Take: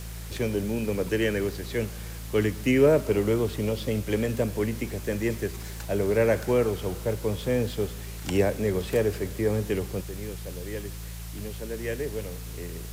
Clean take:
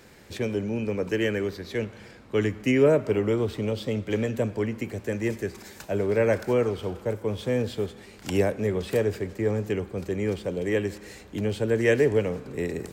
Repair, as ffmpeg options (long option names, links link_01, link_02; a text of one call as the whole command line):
ffmpeg -i in.wav -af "bandreject=frequency=55.8:width_type=h:width=4,bandreject=frequency=111.6:width_type=h:width=4,bandreject=frequency=167.4:width_type=h:width=4,afwtdn=0.0056,asetnsamples=nb_out_samples=441:pad=0,asendcmd='10.01 volume volume 11dB',volume=0dB" out.wav